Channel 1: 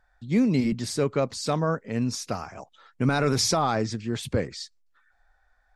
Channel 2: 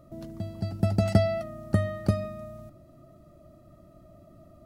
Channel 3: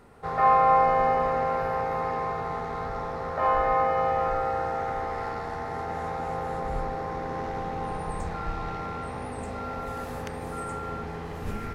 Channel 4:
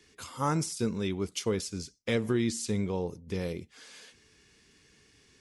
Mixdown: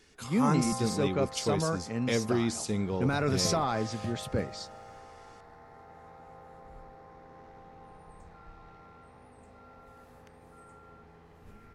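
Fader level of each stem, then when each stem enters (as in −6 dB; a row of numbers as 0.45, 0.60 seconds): −5.5, −16.0, −19.5, −0.5 decibels; 0.00, 2.30, 0.00, 0.00 seconds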